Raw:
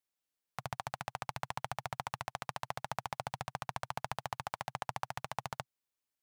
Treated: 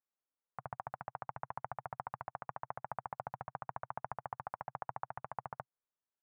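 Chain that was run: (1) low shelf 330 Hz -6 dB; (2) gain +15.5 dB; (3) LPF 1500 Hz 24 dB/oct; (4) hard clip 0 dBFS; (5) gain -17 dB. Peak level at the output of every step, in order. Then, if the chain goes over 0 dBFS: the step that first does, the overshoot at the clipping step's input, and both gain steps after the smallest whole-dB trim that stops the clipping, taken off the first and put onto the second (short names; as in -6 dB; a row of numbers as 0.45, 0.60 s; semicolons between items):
-17.5, -2.0, -5.0, -5.0, -22.0 dBFS; no overload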